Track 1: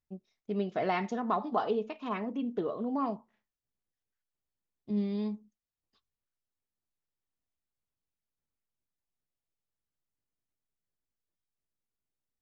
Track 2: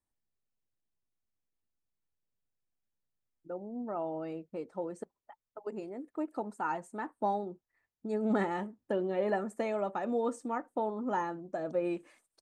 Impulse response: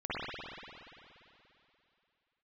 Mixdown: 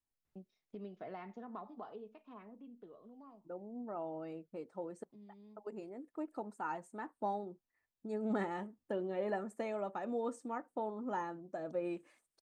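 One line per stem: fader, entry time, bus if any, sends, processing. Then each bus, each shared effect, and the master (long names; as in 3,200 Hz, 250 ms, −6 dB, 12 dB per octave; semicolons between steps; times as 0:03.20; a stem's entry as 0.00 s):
−15.0 dB, 0.25 s, no send, high-shelf EQ 3,500 Hz −10.5 dB; multiband upward and downward compressor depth 70%; automatic ducking −11 dB, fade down 1.90 s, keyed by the second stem
−6.0 dB, 0.00 s, no send, no processing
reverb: not used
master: no processing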